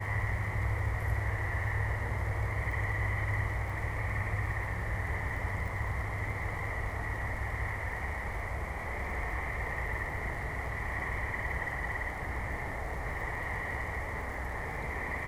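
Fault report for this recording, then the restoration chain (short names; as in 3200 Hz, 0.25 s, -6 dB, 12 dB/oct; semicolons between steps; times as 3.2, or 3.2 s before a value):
crackle 29/s -42 dBFS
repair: de-click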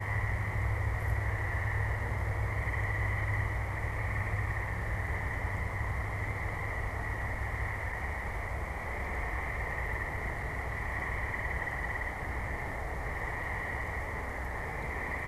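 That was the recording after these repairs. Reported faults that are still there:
none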